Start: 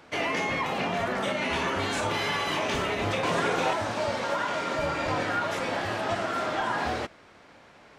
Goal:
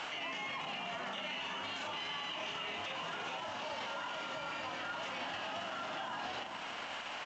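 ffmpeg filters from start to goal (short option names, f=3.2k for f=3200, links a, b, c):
-filter_complex "[0:a]asplit=2[a][b];[b]acompressor=threshold=-38dB:ratio=6,volume=2.5dB[c];[a][c]amix=inputs=2:normalize=0,lowshelf=f=590:t=q:w=1.5:g=-8,acrossover=split=330|6100[d][e][f];[d]acompressor=threshold=-45dB:ratio=4[g];[e]acompressor=threshold=-38dB:ratio=4[h];[f]acompressor=threshold=-60dB:ratio=4[i];[g][h][i]amix=inputs=3:normalize=0,highpass=170,equalizer=f=2.9k:w=4.5:g=12,asplit=2[j][k];[k]adelay=490,lowpass=f=1.2k:p=1,volume=-11dB,asplit=2[l][m];[m]adelay=490,lowpass=f=1.2k:p=1,volume=0.4,asplit=2[n][o];[o]adelay=490,lowpass=f=1.2k:p=1,volume=0.4,asplit=2[p][q];[q]adelay=490,lowpass=f=1.2k:p=1,volume=0.4[r];[j][l][n][p][r]amix=inputs=5:normalize=0,atempo=1.1,aresample=16000,aeval=exprs='sgn(val(0))*max(abs(val(0))-0.00126,0)':c=same,aresample=44100,asplit=2[s][t];[t]adelay=41,volume=-10dB[u];[s][u]amix=inputs=2:normalize=0,alimiter=level_in=13.5dB:limit=-24dB:level=0:latency=1:release=97,volume=-13.5dB,volume=5.5dB"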